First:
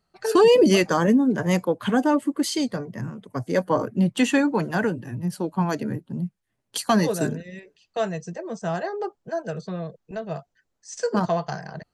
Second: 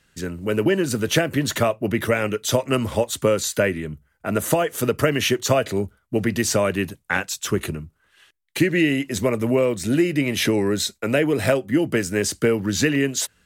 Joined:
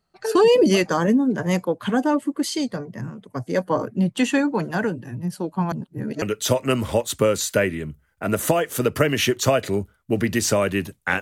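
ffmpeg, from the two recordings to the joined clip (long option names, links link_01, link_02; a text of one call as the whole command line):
ffmpeg -i cue0.wav -i cue1.wav -filter_complex "[0:a]apad=whole_dur=11.21,atrim=end=11.21,asplit=2[link_01][link_02];[link_01]atrim=end=5.722[link_03];[link_02]atrim=start=5.718:end=6.222,asetpts=PTS-STARTPTS,areverse[link_04];[1:a]atrim=start=2.248:end=7.24[link_05];[link_03][link_04]acrossfade=duration=0.004:curve1=hsin:curve2=hsin[link_06];[link_06][link_05]acrossfade=duration=0.004:curve1=hsin:curve2=hsin" out.wav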